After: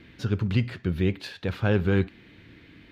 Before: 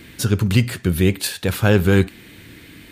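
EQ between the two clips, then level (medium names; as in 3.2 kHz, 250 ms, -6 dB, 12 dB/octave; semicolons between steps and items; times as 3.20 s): distance through air 250 m; treble shelf 5.1 kHz +6 dB; -7.5 dB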